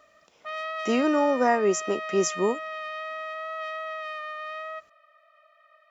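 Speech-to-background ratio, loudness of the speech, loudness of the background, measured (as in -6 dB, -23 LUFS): 9.0 dB, -25.0 LUFS, -34.0 LUFS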